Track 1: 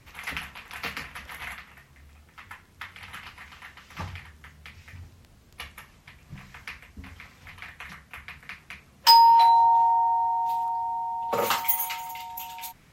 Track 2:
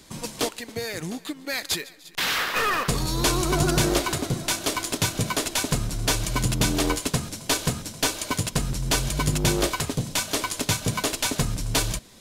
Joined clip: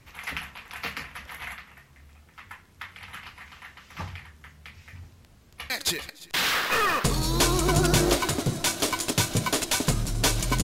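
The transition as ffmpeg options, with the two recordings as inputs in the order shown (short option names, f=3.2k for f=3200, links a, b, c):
-filter_complex "[0:a]apad=whole_dur=10.63,atrim=end=10.63,atrim=end=5.702[a];[1:a]atrim=start=1.538:end=6.47[b];[a][b]acrossfade=d=0.004:c1=hsin:c2=hsin,asplit=2[c][d];[d]afade=t=in:st=5.41:d=0.01,afade=t=out:st=5.7:d=0.01,aecho=0:1:390|780|1170|1560|1950:0.841395|0.336558|0.134623|0.0538493|0.0215397[e];[c][e]amix=inputs=2:normalize=0"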